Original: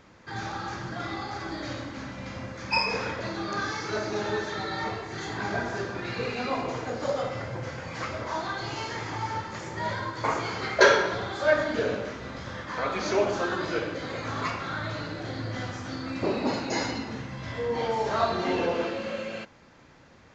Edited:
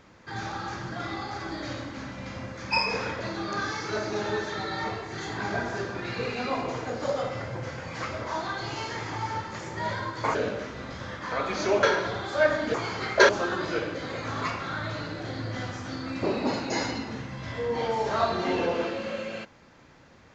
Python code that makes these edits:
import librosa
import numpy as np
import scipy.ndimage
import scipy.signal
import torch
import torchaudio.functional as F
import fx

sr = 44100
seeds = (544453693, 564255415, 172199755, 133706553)

y = fx.edit(x, sr, fx.swap(start_s=10.35, length_s=0.55, other_s=11.81, other_length_s=1.48), tone=tone)